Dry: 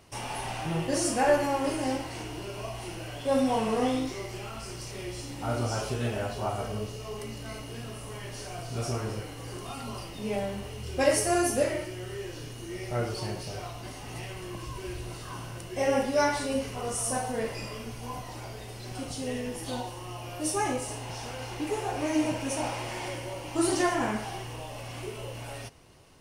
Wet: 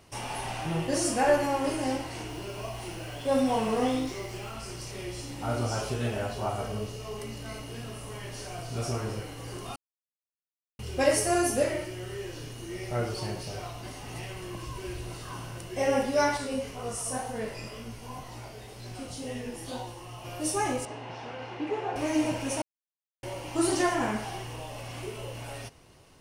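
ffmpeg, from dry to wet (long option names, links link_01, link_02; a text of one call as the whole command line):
ffmpeg -i in.wav -filter_complex "[0:a]asettb=1/sr,asplit=3[link_01][link_02][link_03];[link_01]atrim=end=2.294[link_04];[link_02]atrim=start=2.29:end=4.53,asetpts=PTS-STARTPTS,afade=type=in:duration=0.004:curve=qsin,afade=type=out:start_time=2.236:duration=0.004:curve=qsin,acrusher=bits=8:mix=0:aa=0.5[link_05];[link_03]atrim=start=4.526[link_06];[link_04][link_05]acrossfade=duration=0.004:curve1=hsin:curve2=qsin[link_07];[link_07][link_06]acrossfade=duration=0.004:curve1=qsin:curve2=hsin,asettb=1/sr,asplit=3[link_08][link_09][link_10];[link_08]atrim=end=16.374[link_11];[link_09]atrim=start=16.37:end=20.25,asetpts=PTS-STARTPTS,afade=type=in:duration=0.004:curve=qsin,afade=type=out:start_time=3.876:duration=0.004:curve=qsin,flanger=delay=17:depth=7:speed=2[link_12];[link_10]atrim=start=20.246[link_13];[link_11][link_12]acrossfade=duration=0.004:curve1=hsin:curve2=qsin[link_14];[link_14][link_13]acrossfade=duration=0.004:curve1=qsin:curve2=hsin,asettb=1/sr,asplit=3[link_15][link_16][link_17];[link_15]atrim=end=20.854[link_18];[link_16]atrim=start=20.85:end=21.96,asetpts=PTS-STARTPTS,afade=type=in:duration=0.004:curve=qsin,afade=type=out:start_time=1.106:duration=0.004:curve=qsin,highpass=150,lowpass=2800[link_19];[link_17]atrim=start=21.956[link_20];[link_18][link_19]acrossfade=duration=0.004:curve1=hsin:curve2=qsin[link_21];[link_21][link_20]acrossfade=duration=0.004:curve1=qsin:curve2=hsin,asplit=5[link_22][link_23][link_24][link_25][link_26];[link_22]atrim=end=9.76,asetpts=PTS-STARTPTS,afade=type=out:start_time=9.756:duration=0.004:curve=hsin[link_27];[link_23]atrim=start=9.76:end=10.79,asetpts=PTS-STARTPTS,volume=0[link_28];[link_24]atrim=start=10.79:end=22.62,asetpts=PTS-STARTPTS,afade=type=in:duration=0.004:curve=hsin,afade=type=out:start_time=11.826:duration=0.004:curve=hsin[link_29];[link_25]atrim=start=22.62:end=23.23,asetpts=PTS-STARTPTS,volume=0[link_30];[link_26]atrim=start=23.23,asetpts=PTS-STARTPTS,afade=type=in:duration=0.004:curve=hsin[link_31];[link_27][link_28][link_29][link_30][link_31]concat=n=5:v=0:a=1" out.wav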